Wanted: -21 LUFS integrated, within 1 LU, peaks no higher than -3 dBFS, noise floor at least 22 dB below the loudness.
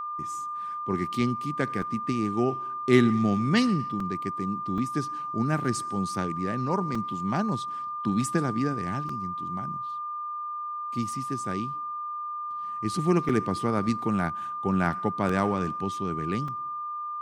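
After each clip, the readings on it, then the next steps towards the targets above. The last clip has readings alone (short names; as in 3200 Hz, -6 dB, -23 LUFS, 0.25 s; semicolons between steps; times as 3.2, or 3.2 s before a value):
dropouts 8; longest dropout 3.6 ms; steady tone 1200 Hz; tone level -31 dBFS; loudness -28.5 LUFS; peak -6.0 dBFS; loudness target -21.0 LUFS
-> interpolate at 1.82/4/4.78/6.95/9.09/13.29/15.29/16.48, 3.6 ms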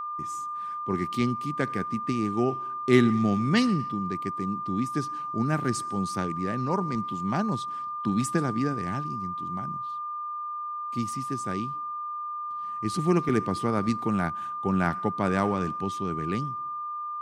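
dropouts 0; steady tone 1200 Hz; tone level -31 dBFS
-> notch 1200 Hz, Q 30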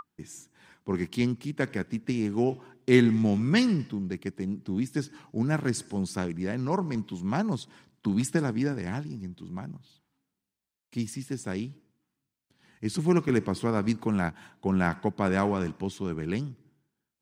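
steady tone none; loudness -29.0 LUFS; peak -6.5 dBFS; loudness target -21.0 LUFS
-> gain +8 dB; limiter -3 dBFS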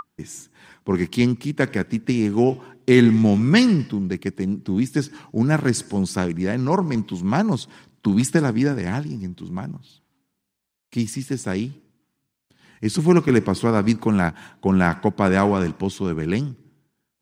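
loudness -21.0 LUFS; peak -3.0 dBFS; noise floor -78 dBFS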